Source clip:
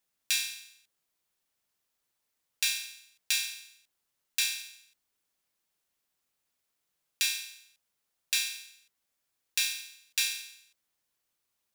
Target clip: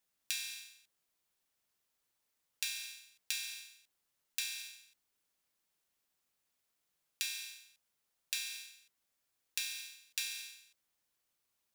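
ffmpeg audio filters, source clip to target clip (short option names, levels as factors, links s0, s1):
-af "acompressor=threshold=0.0224:ratio=6,volume=0.841"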